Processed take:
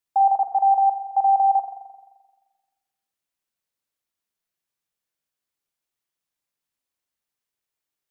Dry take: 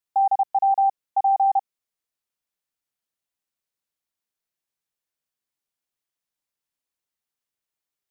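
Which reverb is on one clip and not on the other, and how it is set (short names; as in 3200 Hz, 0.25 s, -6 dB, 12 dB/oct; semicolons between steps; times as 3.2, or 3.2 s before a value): spring tank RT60 1.3 s, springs 43 ms, chirp 80 ms, DRR 7.5 dB; gain +1 dB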